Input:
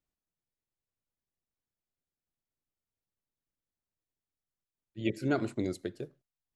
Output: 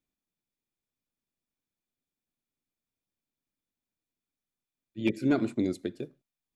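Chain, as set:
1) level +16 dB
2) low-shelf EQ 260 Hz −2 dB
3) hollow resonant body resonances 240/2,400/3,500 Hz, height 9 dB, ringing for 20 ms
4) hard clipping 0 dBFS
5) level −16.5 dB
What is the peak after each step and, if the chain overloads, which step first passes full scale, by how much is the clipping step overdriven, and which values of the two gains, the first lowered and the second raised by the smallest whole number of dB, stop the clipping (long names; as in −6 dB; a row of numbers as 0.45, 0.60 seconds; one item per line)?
−0.5, −1.0, +4.0, 0.0, −16.5 dBFS
step 3, 4.0 dB
step 1 +12 dB, step 5 −12.5 dB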